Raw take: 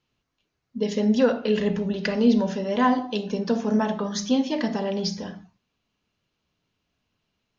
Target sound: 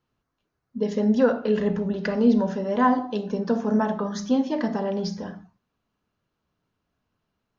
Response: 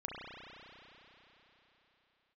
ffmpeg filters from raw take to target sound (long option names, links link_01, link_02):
-af "highshelf=frequency=1900:width_type=q:width=1.5:gain=-6.5"